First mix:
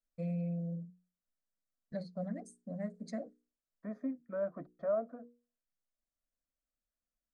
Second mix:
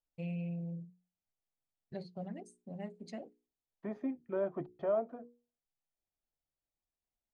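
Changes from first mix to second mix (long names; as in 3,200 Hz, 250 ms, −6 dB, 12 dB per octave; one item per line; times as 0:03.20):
first voice −5.5 dB
master: remove phaser with its sweep stopped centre 570 Hz, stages 8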